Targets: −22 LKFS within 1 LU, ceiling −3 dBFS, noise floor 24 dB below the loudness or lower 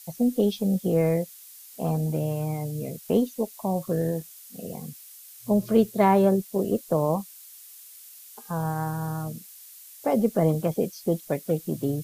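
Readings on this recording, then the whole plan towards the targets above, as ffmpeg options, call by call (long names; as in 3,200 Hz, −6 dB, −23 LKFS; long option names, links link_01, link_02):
background noise floor −47 dBFS; target noise floor −50 dBFS; integrated loudness −26.0 LKFS; sample peak −7.5 dBFS; target loudness −22.0 LKFS
→ -af "afftdn=noise_reduction=6:noise_floor=-47"
-af "volume=4dB"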